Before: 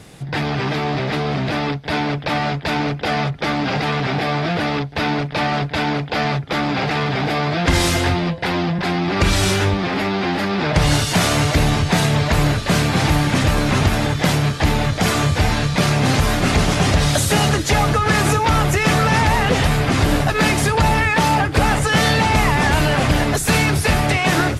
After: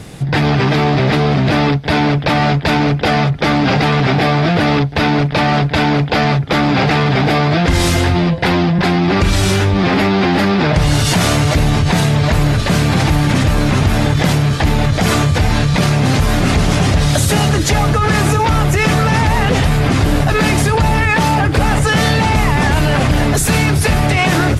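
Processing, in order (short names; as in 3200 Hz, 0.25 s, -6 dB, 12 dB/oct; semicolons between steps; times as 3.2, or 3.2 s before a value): low shelf 300 Hz +5 dB; in parallel at +2 dB: negative-ratio compressor -19 dBFS, ratio -1; on the sum: gain -3 dB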